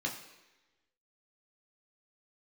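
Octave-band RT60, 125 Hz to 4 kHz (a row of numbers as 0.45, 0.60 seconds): 0.85, 1.0, 1.1, 1.1, 1.2, 1.1 seconds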